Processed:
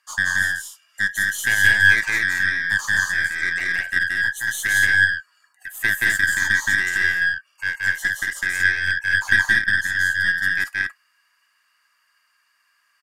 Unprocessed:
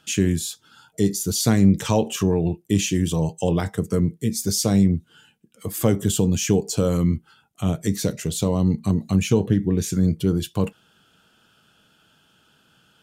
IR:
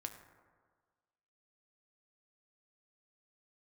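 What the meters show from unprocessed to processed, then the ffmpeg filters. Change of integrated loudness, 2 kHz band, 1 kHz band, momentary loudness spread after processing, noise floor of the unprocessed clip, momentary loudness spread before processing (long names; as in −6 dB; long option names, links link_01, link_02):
+3.0 dB, +25.0 dB, −4.0 dB, 8 LU, −61 dBFS, 8 LU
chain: -filter_complex "[0:a]afftfilt=real='real(if(lt(b,272),68*(eq(floor(b/68),0)*1+eq(floor(b/68),1)*0+eq(floor(b/68),2)*3+eq(floor(b/68),3)*2)+mod(b,68),b),0)':imag='imag(if(lt(b,272),68*(eq(floor(b/68),0)*1+eq(floor(b/68),1)*0+eq(floor(b/68),2)*3+eq(floor(b/68),3)*2)+mod(b,68),b),0)':win_size=2048:overlap=0.75,aeval=exprs='val(0)+0.00316*(sin(2*PI*50*n/s)+sin(2*PI*2*50*n/s)/2+sin(2*PI*3*50*n/s)/3+sin(2*PI*4*50*n/s)/4+sin(2*PI*5*50*n/s)/5)':channel_layout=same,highpass=frequency=710:width=0.5412,highpass=frequency=710:width=1.3066,equalizer=frequency=4000:width_type=o:width=1.1:gain=-8,aeval=exprs='0.473*(cos(1*acos(clip(val(0)/0.473,-1,1)))-cos(1*PI/2))+0.0944*(cos(2*acos(clip(val(0)/0.473,-1,1)))-cos(2*PI/2))+0.0266*(cos(7*acos(clip(val(0)/0.473,-1,1)))-cos(7*PI/2))':channel_layout=same,asplit=2[link_01][link_02];[link_02]aecho=0:1:174.9|227.4:0.891|0.708[link_03];[link_01][link_03]amix=inputs=2:normalize=0,volume=-1dB"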